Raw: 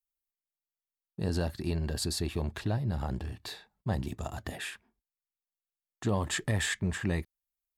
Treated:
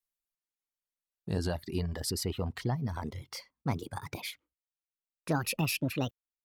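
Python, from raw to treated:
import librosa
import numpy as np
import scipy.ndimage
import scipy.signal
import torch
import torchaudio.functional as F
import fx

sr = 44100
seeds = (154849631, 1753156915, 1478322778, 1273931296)

y = fx.speed_glide(x, sr, from_pct=86, to_pct=155)
y = fx.dereverb_blind(y, sr, rt60_s=1.0)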